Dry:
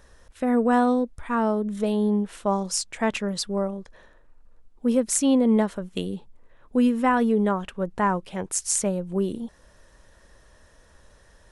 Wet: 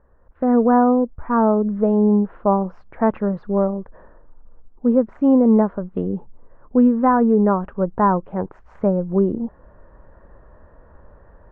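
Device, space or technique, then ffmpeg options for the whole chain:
action camera in a waterproof case: -af "lowpass=f=1300:w=0.5412,lowpass=f=1300:w=1.3066,dynaudnorm=f=230:g=3:m=3.98,volume=0.668" -ar 24000 -c:a aac -b:a 96k

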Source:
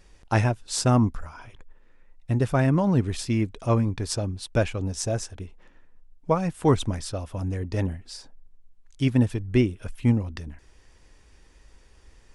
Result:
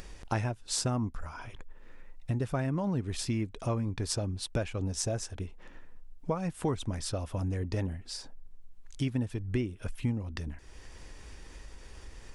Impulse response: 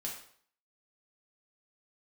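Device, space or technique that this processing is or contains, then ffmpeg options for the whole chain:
upward and downward compression: -af "acompressor=mode=upward:threshold=0.0141:ratio=2.5,acompressor=threshold=0.0355:ratio=4"

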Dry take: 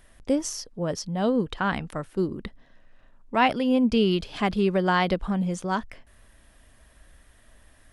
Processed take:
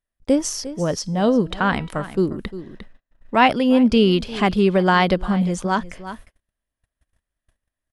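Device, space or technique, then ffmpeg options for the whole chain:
ducked delay: -filter_complex "[0:a]asplit=3[s0][s1][s2];[s1]adelay=352,volume=0.708[s3];[s2]apad=whole_len=365000[s4];[s3][s4]sidechaincompress=threshold=0.00794:ratio=3:attack=5.8:release=518[s5];[s0][s5]amix=inputs=2:normalize=0,asettb=1/sr,asplit=3[s6][s7][s8];[s6]atrim=end=0.994[s9];[s7]atrim=start=0.99:end=2.13,asetpts=PTS-STARTPTS,afade=t=in:d=0.004:c=qsin,afade=t=out:st=1.136:d=0.004:c=qsin,bandreject=f=324.8:t=h:w=4,bandreject=f=649.6:t=h:w=4,bandreject=f=974.4:t=h:w=4,bandreject=f=1299.2:t=h:w=4,bandreject=f=1624:t=h:w=4,bandreject=f=1948.8:t=h:w=4,bandreject=f=2273.6:t=h:w=4,bandreject=f=2598.4:t=h:w=4,bandreject=f=2923.2:t=h:w=4,bandreject=f=3248:t=h:w=4,bandreject=f=3572.8:t=h:w=4,bandreject=f=3897.6:t=h:w=4,bandreject=f=4222.4:t=h:w=4,bandreject=f=4547.2:t=h:w=4,bandreject=f=4872:t=h:w=4,bandreject=f=5196.8:t=h:w=4,bandreject=f=5521.6:t=h:w=4,bandreject=f=5846.4:t=h:w=4,bandreject=f=6171.2:t=h:w=4,bandreject=f=6496:t=h:w=4,bandreject=f=6820.8:t=h:w=4,bandreject=f=7145.6:t=h:w=4,bandreject=f=7470.4:t=h:w=4,bandreject=f=7795.2:t=h:w=4,bandreject=f=8120:t=h:w=4,bandreject=f=8444.8:t=h:w=4,bandreject=f=8769.6:t=h:w=4,bandreject=f=9094.4:t=h:w=4,bandreject=f=9419.2:t=h:w=4,bandreject=f=9744:t=h:w=4,bandreject=f=10068.8:t=h:w=4,bandreject=f=10393.6:t=h:w=4,bandreject=f=10718.4:t=h:w=4,bandreject=f=11043.2:t=h:w=4,bandreject=f=11368:t=h:w=4,bandreject=f=11692.8:t=h:w=4,bandreject=f=12017.6:t=h:w=4,bandreject=f=12342.4:t=h:w=4,bandreject=f=12667.2:t=h:w=4[s10];[s8]atrim=start=2.126[s11];[s9][s10]acrossfade=d=0.004:c1=hsin:c2=qsin[s12];[s12][s11]acrossfade=d=0.004:c1=qsin:c2=hsin,agate=range=0.0141:threshold=0.00562:ratio=16:detection=peak,volume=2"

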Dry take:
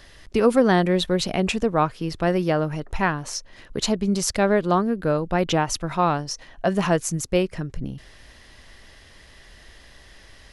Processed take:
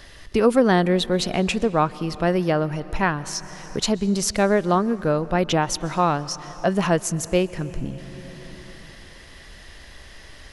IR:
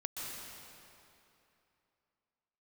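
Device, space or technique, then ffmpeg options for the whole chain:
ducked reverb: -filter_complex "[0:a]asplit=3[s0][s1][s2];[1:a]atrim=start_sample=2205[s3];[s1][s3]afir=irnorm=-1:irlink=0[s4];[s2]apad=whole_len=464077[s5];[s4][s5]sidechaincompress=threshold=0.0126:ratio=3:attack=27:release=658,volume=0.708[s6];[s0][s6]amix=inputs=2:normalize=0"

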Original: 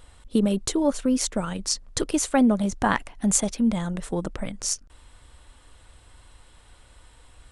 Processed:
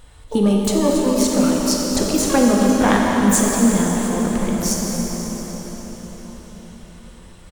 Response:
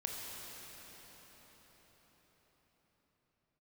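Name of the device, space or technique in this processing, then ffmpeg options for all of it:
shimmer-style reverb: -filter_complex "[0:a]asplit=2[s0][s1];[s1]adelay=233.2,volume=0.251,highshelf=f=4000:g=-5.25[s2];[s0][s2]amix=inputs=2:normalize=0,asplit=2[s3][s4];[s4]asetrate=88200,aresample=44100,atempo=0.5,volume=0.282[s5];[s3][s5]amix=inputs=2:normalize=0[s6];[1:a]atrim=start_sample=2205[s7];[s6][s7]afir=irnorm=-1:irlink=0,volume=1.78"

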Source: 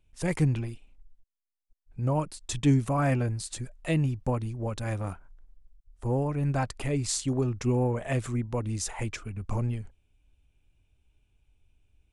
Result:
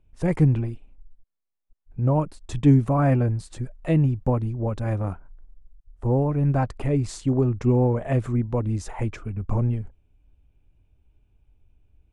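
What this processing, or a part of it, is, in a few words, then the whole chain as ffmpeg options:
through cloth: -af "highshelf=f=2100:g=-17,volume=2.11"

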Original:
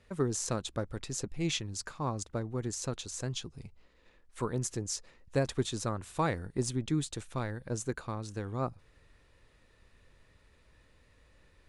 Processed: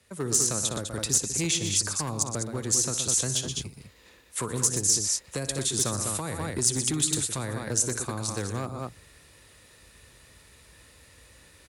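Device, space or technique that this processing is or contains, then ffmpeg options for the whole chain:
FM broadcast chain: -filter_complex "[0:a]highpass=f=50:w=0.5412,highpass=f=50:w=1.3066,aemphasis=mode=reproduction:type=75kf,aecho=1:1:59|121|201:0.168|0.266|0.355,dynaudnorm=f=220:g=3:m=2.82,acrossover=split=98|460|1100|7800[s0][s1][s2][s3][s4];[s0]acompressor=threshold=0.0112:ratio=4[s5];[s1]acompressor=threshold=0.0398:ratio=4[s6];[s2]acompressor=threshold=0.0178:ratio=4[s7];[s3]acompressor=threshold=0.0112:ratio=4[s8];[s4]acompressor=threshold=0.00251:ratio=4[s9];[s5][s6][s7][s8][s9]amix=inputs=5:normalize=0,aemphasis=mode=production:type=75fm,alimiter=limit=0.119:level=0:latency=1:release=266,asoftclip=type=hard:threshold=0.0794,lowpass=f=15000:w=0.5412,lowpass=f=15000:w=1.3066,aemphasis=mode=production:type=75fm"

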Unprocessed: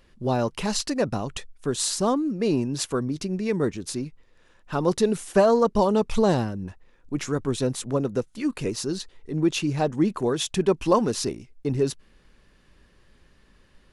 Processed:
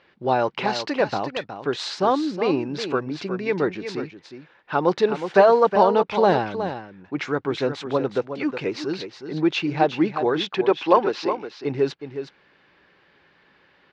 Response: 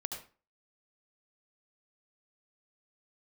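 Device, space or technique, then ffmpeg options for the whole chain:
kitchen radio: -filter_complex "[0:a]asettb=1/sr,asplit=3[s0][s1][s2];[s0]atrim=end=10.384[s3];[s1]atrim=start=10.38:end=11.51,asetpts=PTS-STARTPTS,afade=t=in:d=0.004:c=qsin,afade=t=out:st=1.126:d=0.004:c=qsin,acrossover=split=220 6000:gain=0.224 1 0.224[s4][s5][s6];[s4][s5][s6]amix=inputs=3:normalize=0[s7];[s2]atrim=start=11.506[s8];[s3][s7]acrossfade=d=0.004:c1=hsin:c2=qsin[s9];[s9][s8]acrossfade=d=0.004:c1=qsin:c2=hsin,highpass=200,equalizer=f=230:t=q:w=4:g=-8,equalizer=f=820:t=q:w=4:g=6,equalizer=f=1500:t=q:w=4:g=5,equalizer=f=2200:t=q:w=4:g=5,lowpass=f=4300:w=0.5412,lowpass=f=4300:w=1.3066,aecho=1:1:365:0.335,volume=1.41"

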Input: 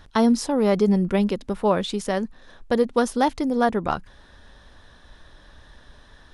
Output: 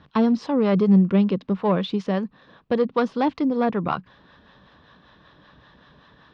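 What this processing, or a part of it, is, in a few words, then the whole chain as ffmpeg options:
guitar amplifier with harmonic tremolo: -filter_complex "[0:a]acrossover=split=580[s0][s1];[s0]aeval=exprs='val(0)*(1-0.5/2+0.5/2*cos(2*PI*5.2*n/s))':c=same[s2];[s1]aeval=exprs='val(0)*(1-0.5/2-0.5/2*cos(2*PI*5.2*n/s))':c=same[s3];[s2][s3]amix=inputs=2:normalize=0,asoftclip=type=tanh:threshold=0.224,highpass=97,equalizer=f=140:t=q:w=4:g=8,equalizer=f=190:t=q:w=4:g=7,equalizer=f=290:t=q:w=4:g=4,equalizer=f=470:t=q:w=4:g=3,equalizer=f=1100:t=q:w=4:g=7,equalizer=f=2700:t=q:w=4:g=3,lowpass=f=4400:w=0.5412,lowpass=f=4400:w=1.3066"

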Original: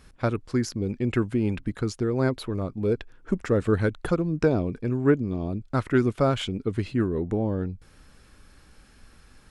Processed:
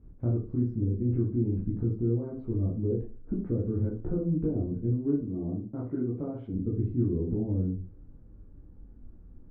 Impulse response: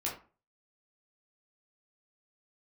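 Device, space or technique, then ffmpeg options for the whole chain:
television next door: -filter_complex "[0:a]asettb=1/sr,asplit=3[s0][s1][s2];[s0]atrim=end=5.214[s3];[s1]atrim=start=5.21:end=6.54,asetpts=PTS-STARTPTS,afade=t=in:d=0.004:c=qsin,afade=t=out:st=1.326:d=0.004:c=qsin,highpass=f=280:p=1[s4];[s2]atrim=start=6.536[s5];[s3][s4]acrossfade=d=0.004:c1=hsin:c2=qsin[s6];[s6][s5]acrossfade=d=0.004:c1=qsin:c2=hsin,acompressor=threshold=0.0398:ratio=3,lowpass=290[s7];[1:a]atrim=start_sample=2205[s8];[s7][s8]afir=irnorm=-1:irlink=0,volume=1.19"

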